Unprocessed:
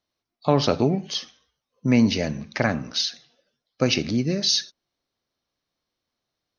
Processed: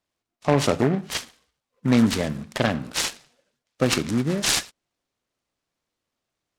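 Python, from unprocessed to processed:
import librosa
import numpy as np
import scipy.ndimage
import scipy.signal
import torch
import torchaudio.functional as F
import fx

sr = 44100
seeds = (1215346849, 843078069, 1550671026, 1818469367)

y = fx.noise_mod_delay(x, sr, seeds[0], noise_hz=1200.0, depth_ms=0.064)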